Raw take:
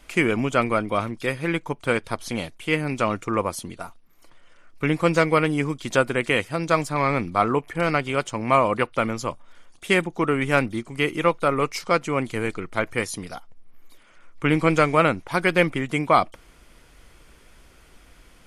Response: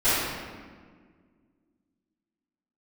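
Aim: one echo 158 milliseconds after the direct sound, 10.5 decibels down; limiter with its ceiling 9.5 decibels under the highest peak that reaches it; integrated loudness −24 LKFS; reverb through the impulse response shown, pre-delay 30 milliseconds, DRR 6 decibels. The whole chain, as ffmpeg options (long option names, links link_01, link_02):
-filter_complex "[0:a]alimiter=limit=-13.5dB:level=0:latency=1,aecho=1:1:158:0.299,asplit=2[link_01][link_02];[1:a]atrim=start_sample=2205,adelay=30[link_03];[link_02][link_03]afir=irnorm=-1:irlink=0,volume=-23.5dB[link_04];[link_01][link_04]amix=inputs=2:normalize=0,volume=1dB"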